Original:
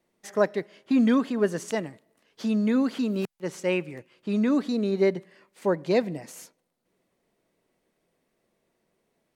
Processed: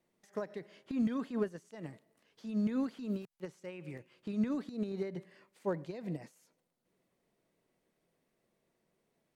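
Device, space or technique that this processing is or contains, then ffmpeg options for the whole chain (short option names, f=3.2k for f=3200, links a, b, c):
de-esser from a sidechain: -filter_complex "[0:a]asplit=2[a][b];[b]highpass=6.2k,apad=whole_len=412760[c];[a][c]sidechaincompress=threshold=-59dB:ratio=16:attack=1.2:release=71,equalizer=f=140:w=1.7:g=3.5,volume=-5.5dB"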